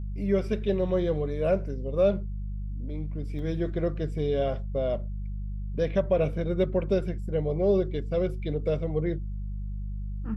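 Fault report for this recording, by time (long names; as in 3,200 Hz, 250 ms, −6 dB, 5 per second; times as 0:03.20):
mains hum 50 Hz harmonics 4 −33 dBFS
0:03.39: drop-out 3.1 ms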